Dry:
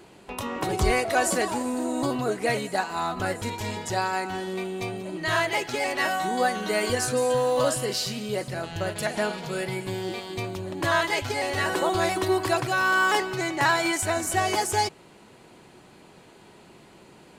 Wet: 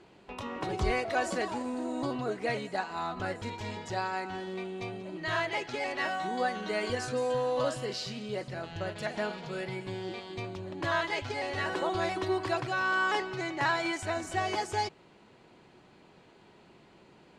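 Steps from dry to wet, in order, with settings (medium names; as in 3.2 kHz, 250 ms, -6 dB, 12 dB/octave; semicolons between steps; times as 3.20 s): low-pass 5.1 kHz 12 dB/octave; trim -6.5 dB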